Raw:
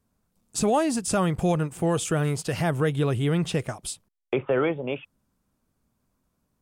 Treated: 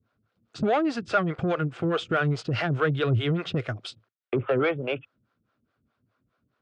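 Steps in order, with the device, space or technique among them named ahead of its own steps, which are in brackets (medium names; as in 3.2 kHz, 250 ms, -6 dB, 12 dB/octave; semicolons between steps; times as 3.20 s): guitar amplifier with harmonic tremolo (harmonic tremolo 4.8 Hz, depth 100%, crossover 400 Hz; saturation -22 dBFS, distortion -16 dB; cabinet simulation 100–4000 Hz, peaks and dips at 110 Hz +7 dB, 180 Hz -7 dB, 910 Hz -7 dB, 1.4 kHz +8 dB); 2.10–3.91 s: treble shelf 6.9 kHz +8 dB; trim +6.5 dB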